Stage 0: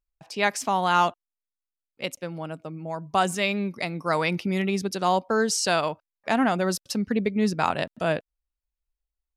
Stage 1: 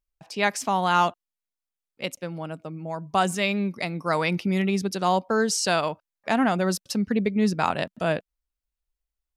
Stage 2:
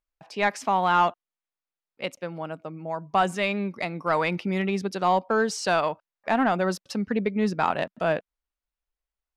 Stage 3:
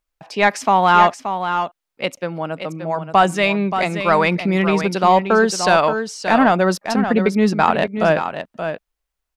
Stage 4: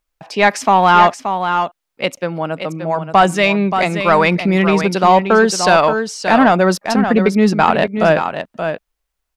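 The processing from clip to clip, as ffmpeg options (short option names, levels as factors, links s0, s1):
-af "equalizer=f=190:w=3.6:g=2.5"
-filter_complex "[0:a]asplit=2[s0][s1];[s1]highpass=f=720:p=1,volume=2.82,asoftclip=type=tanh:threshold=0.376[s2];[s0][s2]amix=inputs=2:normalize=0,lowpass=f=1500:p=1,volume=0.501"
-af "aecho=1:1:577:0.376,volume=2.66"
-af "asoftclip=type=tanh:threshold=0.631,volume=1.58"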